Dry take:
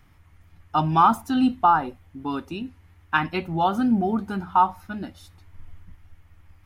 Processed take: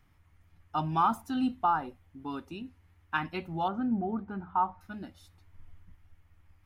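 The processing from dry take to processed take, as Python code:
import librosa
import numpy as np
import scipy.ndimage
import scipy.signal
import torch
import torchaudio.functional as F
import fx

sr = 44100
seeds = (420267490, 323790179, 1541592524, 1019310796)

y = fx.lowpass(x, sr, hz=1700.0, slope=12, at=(3.68, 4.81))
y = F.gain(torch.from_numpy(y), -9.0).numpy()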